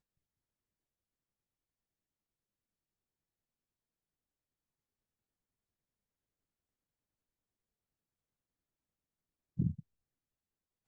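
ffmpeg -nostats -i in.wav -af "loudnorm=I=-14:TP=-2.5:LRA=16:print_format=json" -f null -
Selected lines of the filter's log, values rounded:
"input_i" : "-38.4",
"input_tp" : "-21.0",
"input_lra" : "0.0",
"input_thresh" : "-49.1",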